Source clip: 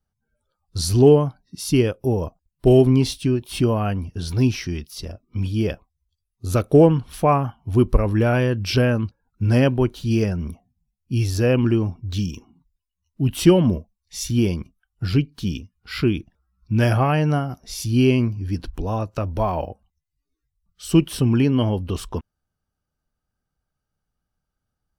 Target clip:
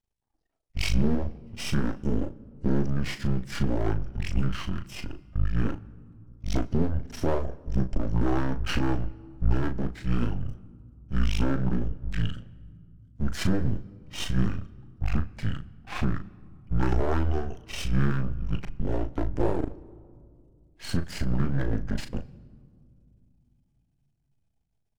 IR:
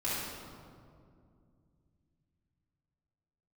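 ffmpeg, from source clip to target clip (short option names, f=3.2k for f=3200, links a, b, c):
-filter_complex "[0:a]asetrate=23361,aresample=44100,atempo=1.88775,alimiter=limit=-13.5dB:level=0:latency=1:release=205,aeval=exprs='max(val(0),0)':c=same,asplit=2[a][b];[b]adelay=37,volume=-9dB[c];[a][c]amix=inputs=2:normalize=0,asplit=2[d][e];[1:a]atrim=start_sample=2205[f];[e][f]afir=irnorm=-1:irlink=0,volume=-25.5dB[g];[d][g]amix=inputs=2:normalize=0"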